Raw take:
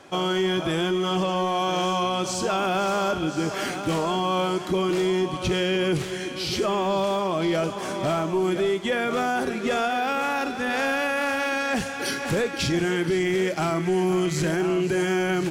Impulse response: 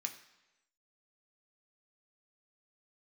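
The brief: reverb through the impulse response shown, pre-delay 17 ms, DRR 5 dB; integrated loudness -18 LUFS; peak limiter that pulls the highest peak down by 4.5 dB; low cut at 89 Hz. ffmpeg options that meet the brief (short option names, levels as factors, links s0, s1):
-filter_complex "[0:a]highpass=89,alimiter=limit=0.126:level=0:latency=1,asplit=2[s0][s1];[1:a]atrim=start_sample=2205,adelay=17[s2];[s1][s2]afir=irnorm=-1:irlink=0,volume=0.631[s3];[s0][s3]amix=inputs=2:normalize=0,volume=2.37"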